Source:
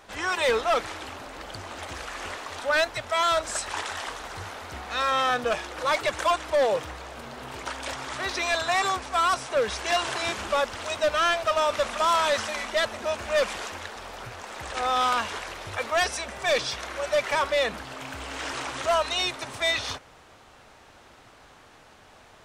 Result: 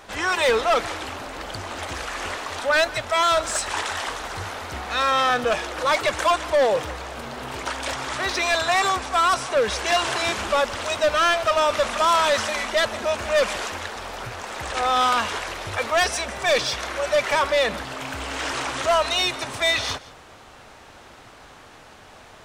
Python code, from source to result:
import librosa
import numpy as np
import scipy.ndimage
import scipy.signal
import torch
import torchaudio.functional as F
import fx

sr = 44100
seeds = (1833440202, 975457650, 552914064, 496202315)

p1 = x + 10.0 ** (-21.5 / 20.0) * np.pad(x, (int(165 * sr / 1000.0), 0))[:len(x)]
p2 = 10.0 ** (-27.5 / 20.0) * np.tanh(p1 / 10.0 ** (-27.5 / 20.0))
p3 = p1 + (p2 * 10.0 ** (-3.0 / 20.0))
y = p3 * 10.0 ** (1.5 / 20.0)